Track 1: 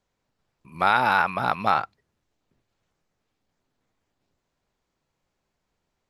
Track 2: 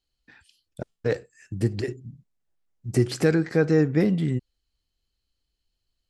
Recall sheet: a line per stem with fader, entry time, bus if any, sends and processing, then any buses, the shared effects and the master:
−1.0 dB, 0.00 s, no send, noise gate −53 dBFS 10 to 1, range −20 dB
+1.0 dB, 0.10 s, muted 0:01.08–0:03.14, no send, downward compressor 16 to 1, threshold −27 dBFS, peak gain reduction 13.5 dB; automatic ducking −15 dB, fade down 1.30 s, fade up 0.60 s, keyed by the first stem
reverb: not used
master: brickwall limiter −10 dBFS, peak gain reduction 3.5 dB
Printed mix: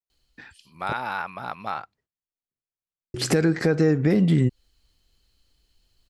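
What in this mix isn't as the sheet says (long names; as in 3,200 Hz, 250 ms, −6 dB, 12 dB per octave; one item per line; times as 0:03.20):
stem 1 −1.0 dB → −9.0 dB
stem 2 +1.0 dB → +12.5 dB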